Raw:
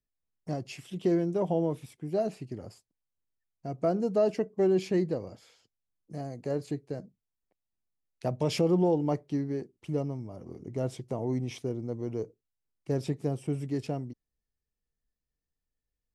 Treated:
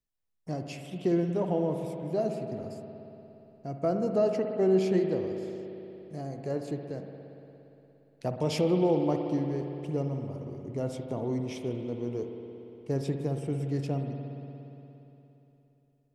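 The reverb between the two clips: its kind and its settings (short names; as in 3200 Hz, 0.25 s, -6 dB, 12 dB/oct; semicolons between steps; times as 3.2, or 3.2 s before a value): spring tank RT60 3.3 s, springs 58 ms, chirp 25 ms, DRR 4.5 dB; gain -1 dB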